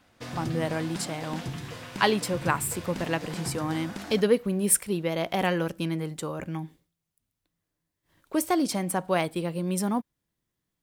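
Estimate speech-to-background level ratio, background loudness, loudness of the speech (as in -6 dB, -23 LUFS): 10.0 dB, -38.0 LUFS, -28.0 LUFS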